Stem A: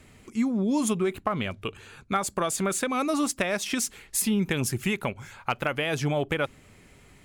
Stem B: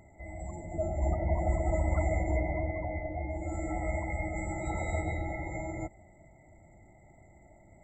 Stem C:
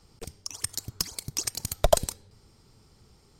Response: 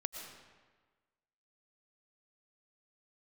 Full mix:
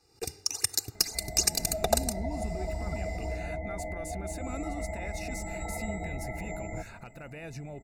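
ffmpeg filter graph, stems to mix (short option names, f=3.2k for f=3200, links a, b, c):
-filter_complex "[0:a]lowshelf=f=290:g=8,acompressor=threshold=-27dB:ratio=6,alimiter=level_in=8.5dB:limit=-24dB:level=0:latency=1:release=230,volume=-8.5dB,adelay=1550,volume=-0.5dB[a];[1:a]aecho=1:1:4.4:0.73,acompressor=threshold=-36dB:ratio=2.5,adelay=950,volume=1.5dB[b];[2:a]highpass=f=210:p=1,aecho=1:1:2.5:0.65,dynaudnorm=f=140:g=3:m=15dB,volume=-7dB[c];[a][b][c]amix=inputs=3:normalize=0,asuperstop=centerf=3200:order=20:qfactor=5.2,equalizer=f=1.1k:w=5.7:g=-9"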